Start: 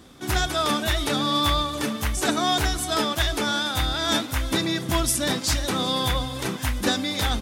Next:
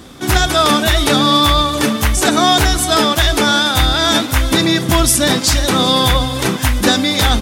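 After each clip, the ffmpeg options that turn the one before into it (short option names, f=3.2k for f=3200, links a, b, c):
-af "alimiter=level_in=12.5dB:limit=-1dB:release=50:level=0:latency=1,volume=-1dB"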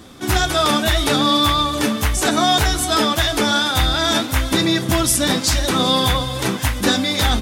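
-af "flanger=delay=9.3:depth=3.1:regen=-55:speed=0.62:shape=sinusoidal"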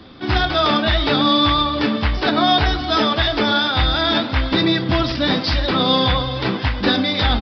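-filter_complex "[0:a]acrossover=split=160|1500[a][b][c];[b]aecho=1:1:99:0.316[d];[c]aeval=exprs='(mod(2.51*val(0)+1,2)-1)/2.51':c=same[e];[a][d][e]amix=inputs=3:normalize=0,aresample=11025,aresample=44100"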